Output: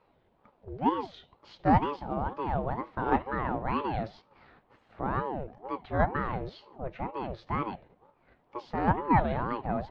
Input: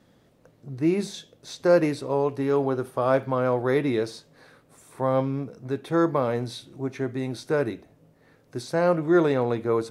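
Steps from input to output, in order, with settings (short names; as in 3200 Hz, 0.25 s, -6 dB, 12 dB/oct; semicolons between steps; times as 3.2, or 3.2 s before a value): LPF 3400 Hz 24 dB/oct; in parallel at +1 dB: level quantiser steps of 19 dB; on the sum: ring modulator with a swept carrier 470 Hz, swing 55%, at 2.1 Hz; gain -6 dB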